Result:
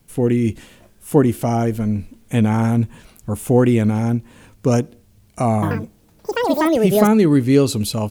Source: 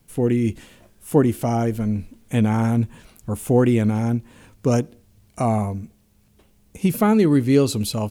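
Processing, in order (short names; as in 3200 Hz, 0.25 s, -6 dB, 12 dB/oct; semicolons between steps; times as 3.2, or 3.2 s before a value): 5.54–7.71 echoes that change speed 84 ms, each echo +7 st, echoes 2; gain +2.5 dB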